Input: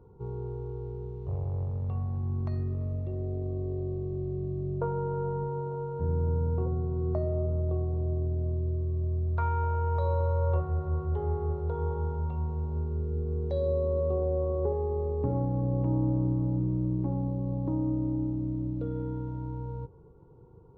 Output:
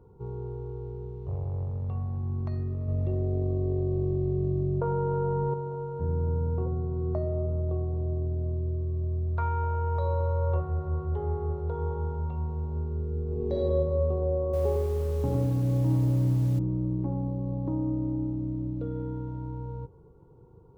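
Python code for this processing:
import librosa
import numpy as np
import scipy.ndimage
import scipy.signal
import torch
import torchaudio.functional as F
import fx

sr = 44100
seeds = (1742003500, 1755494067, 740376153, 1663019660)

y = fx.env_flatten(x, sr, amount_pct=100, at=(2.88, 5.54))
y = fx.reverb_throw(y, sr, start_s=13.26, length_s=0.4, rt60_s=2.0, drr_db=-4.0)
y = fx.echo_crushed(y, sr, ms=104, feedback_pct=35, bits=8, wet_db=-3.5, at=(14.43, 16.59))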